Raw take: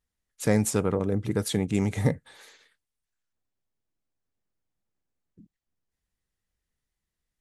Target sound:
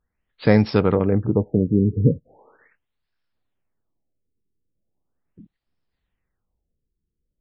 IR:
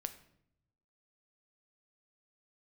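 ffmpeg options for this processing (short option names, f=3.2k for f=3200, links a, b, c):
-af "afftfilt=real='re*lt(b*sr/1024,470*pow(5600/470,0.5+0.5*sin(2*PI*0.39*pts/sr)))':imag='im*lt(b*sr/1024,470*pow(5600/470,0.5+0.5*sin(2*PI*0.39*pts/sr)))':win_size=1024:overlap=0.75,volume=7.5dB"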